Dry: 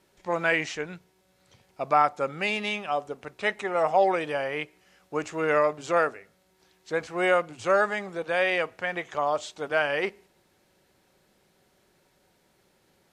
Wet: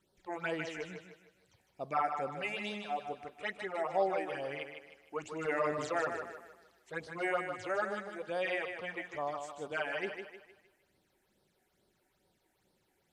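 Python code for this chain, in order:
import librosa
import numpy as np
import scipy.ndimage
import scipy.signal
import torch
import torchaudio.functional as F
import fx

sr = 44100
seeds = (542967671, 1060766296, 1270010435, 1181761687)

y = fx.phaser_stages(x, sr, stages=8, low_hz=140.0, high_hz=2400.0, hz=2.3, feedback_pct=25)
y = fx.transient(y, sr, attack_db=2, sustain_db=8, at=(5.39, 6.98))
y = fx.echo_thinned(y, sr, ms=154, feedback_pct=41, hz=190.0, wet_db=-6.5)
y = y * librosa.db_to_amplitude(-8.0)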